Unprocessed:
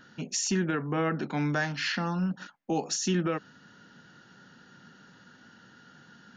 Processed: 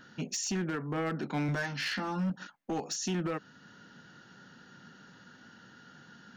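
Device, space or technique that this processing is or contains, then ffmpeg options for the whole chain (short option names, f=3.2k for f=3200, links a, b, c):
limiter into clipper: -filter_complex "[0:a]asettb=1/sr,asplit=3[a][b][c];[a]atrim=end=1.474[d];[b]atrim=start=1.47:end=2.3,asetpts=PTS-STARTPTS,afade=t=in:d=0.004:c=qsin,afade=t=out:st=0.826:d=0.004:c=qsin,asplit=2[e][f];[f]adelay=15,volume=-2dB[g];[e][g]amix=inputs=2:normalize=0,atrim=end_sample=36603[h];[c]atrim=start=2.296[i];[d][h]acrossfade=d=0.004:c1=hsin:c2=qsin[j];[j][i]acrossfade=d=0.004:c1=qsin:c2=hsin,alimiter=limit=-23dB:level=0:latency=1:release=382,asoftclip=type=hard:threshold=-27.5dB"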